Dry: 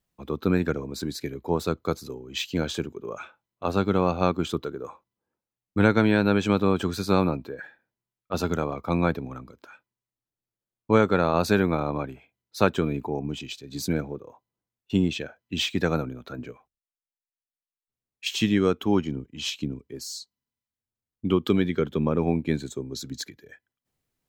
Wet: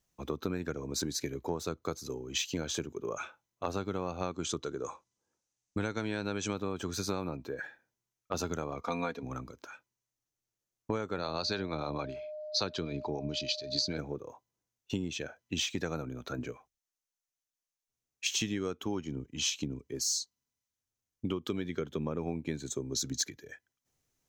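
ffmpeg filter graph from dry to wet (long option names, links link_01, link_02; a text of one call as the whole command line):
ffmpeg -i in.wav -filter_complex "[0:a]asettb=1/sr,asplit=3[link_01][link_02][link_03];[link_01]atrim=end=4.314[link_04];[link_02]atrim=start=4.31:end=6.54,asetpts=PTS-STARTPTS,afade=type=in:duration=0.004:curve=qsin,afade=type=out:start_time=2.226:duration=0.004:curve=qsin,lowpass=frequency=7900:width=0.5412,lowpass=frequency=7900:width=1.3066,aemphasis=mode=production:type=50fm[link_05];[link_03]atrim=start=6.536[link_06];[link_04][link_05]acrossfade=duration=0.004:curve1=hsin:curve2=qsin[link_07];[link_07][link_06]acrossfade=duration=0.004:curve1=qsin:curve2=hsin,asettb=1/sr,asplit=3[link_08][link_09][link_10];[link_08]atrim=end=8.814[link_11];[link_09]atrim=start=8.81:end=9.23,asetpts=PTS-STARTPTS,afade=type=in:duration=0.004:curve=qsin,afade=type=out:start_time=0.416:duration=0.004:curve=qsin,lowpass=4600,aemphasis=mode=production:type=bsi,aecho=1:1:4.2:0.73,atrim=end_sample=18522[link_12];[link_10]atrim=start=9.226[link_13];[link_11][link_12]acrossfade=duration=0.004:curve1=hsin:curve2=qsin[link_14];[link_14][link_13]acrossfade=duration=0.004:curve1=qsin:curve2=hsin,asettb=1/sr,asplit=3[link_15][link_16][link_17];[link_15]atrim=end=11.184[link_18];[link_16]atrim=start=11.18:end=13.98,asetpts=PTS-STARTPTS,afade=type=in:duration=0.004:curve=qsin,afade=type=out:start_time=2.796:duration=0.004:curve=qsin,acrossover=split=440[link_19][link_20];[link_19]aeval=exprs='val(0)*(1-0.5/2+0.5/2*cos(2*PI*6.7*n/s))':channel_layout=same[link_21];[link_20]aeval=exprs='val(0)*(1-0.5/2-0.5/2*cos(2*PI*6.7*n/s))':channel_layout=same[link_22];[link_21][link_22]amix=inputs=2:normalize=0,aeval=exprs='val(0)+0.0112*sin(2*PI*610*n/s)':channel_layout=same,lowpass=frequency=4500:width_type=q:width=8[link_23];[link_17]atrim=start=13.976[link_24];[link_18][link_23]acrossfade=duration=0.004:curve1=hsin:curve2=qsin[link_25];[link_25][link_24]acrossfade=duration=0.004:curve1=qsin:curve2=hsin,equalizer=frequency=200:width_type=o:width=0.43:gain=-3.5,acompressor=threshold=-31dB:ratio=6,equalizer=frequency=6200:width_type=o:width=0.42:gain=10.5" out.wav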